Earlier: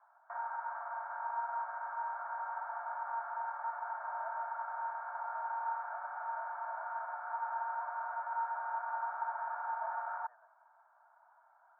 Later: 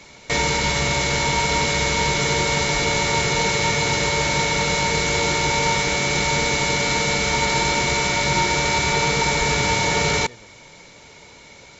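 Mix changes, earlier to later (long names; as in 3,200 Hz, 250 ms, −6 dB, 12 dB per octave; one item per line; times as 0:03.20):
background +11.5 dB
master: remove Chebyshev band-pass filter 650–1,600 Hz, order 5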